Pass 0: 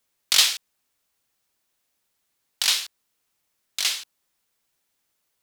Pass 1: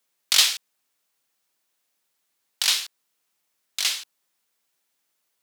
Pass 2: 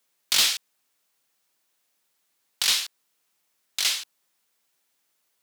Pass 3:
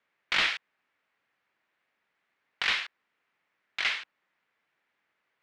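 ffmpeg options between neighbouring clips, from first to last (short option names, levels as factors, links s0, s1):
-af "highpass=150,equalizer=f=190:t=o:w=3:g=-2.5"
-af "asoftclip=type=tanh:threshold=0.15,volume=1.26"
-af "lowpass=f=2000:t=q:w=1.9"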